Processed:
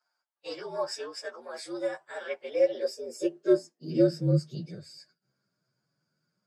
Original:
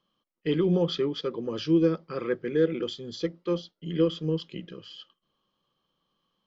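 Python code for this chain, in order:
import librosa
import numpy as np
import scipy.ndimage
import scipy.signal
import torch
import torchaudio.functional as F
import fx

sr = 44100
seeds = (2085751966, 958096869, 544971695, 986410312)

y = fx.partial_stretch(x, sr, pct=117)
y = fx.filter_sweep_highpass(y, sr, from_hz=870.0, to_hz=130.0, start_s=2.34, end_s=4.6, q=3.1)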